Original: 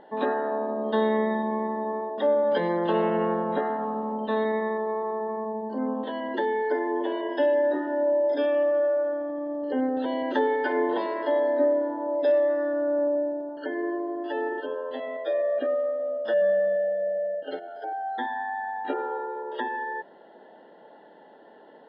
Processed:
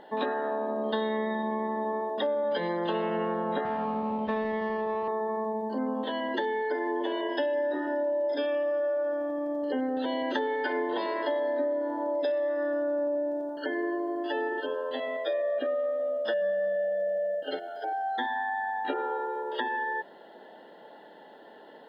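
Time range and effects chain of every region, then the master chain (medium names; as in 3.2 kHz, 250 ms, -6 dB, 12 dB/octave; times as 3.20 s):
3.65–5.08 s: median filter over 15 samples + low-pass 2.9 kHz 24 dB/octave + resonant low shelf 180 Hz +12.5 dB, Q 1.5
whole clip: treble shelf 2.8 kHz +11.5 dB; compression, threshold -26 dBFS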